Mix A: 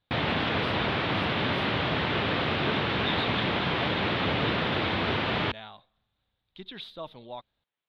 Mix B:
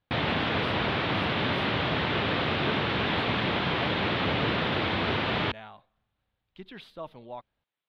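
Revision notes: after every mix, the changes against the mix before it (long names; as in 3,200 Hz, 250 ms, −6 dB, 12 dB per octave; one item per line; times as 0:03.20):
speech: add parametric band 3,700 Hz −12 dB 0.41 octaves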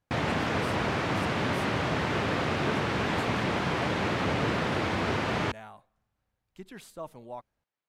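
master: add high shelf with overshoot 5,200 Hz +13.5 dB, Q 3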